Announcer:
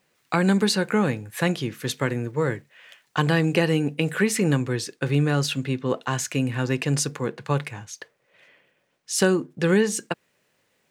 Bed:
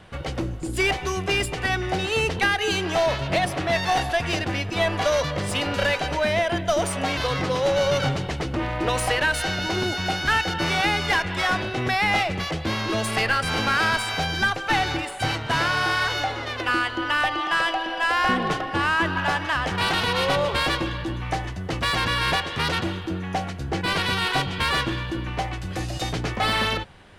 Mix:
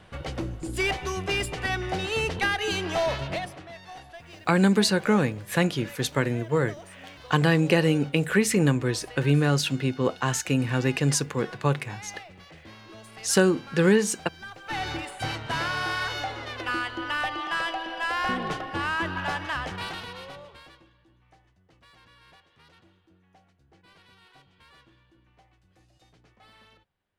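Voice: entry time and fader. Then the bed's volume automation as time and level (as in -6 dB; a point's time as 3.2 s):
4.15 s, 0.0 dB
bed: 3.23 s -4 dB
3.74 s -21.5 dB
14.4 s -21.5 dB
14.87 s -6 dB
19.59 s -6 dB
20.94 s -33 dB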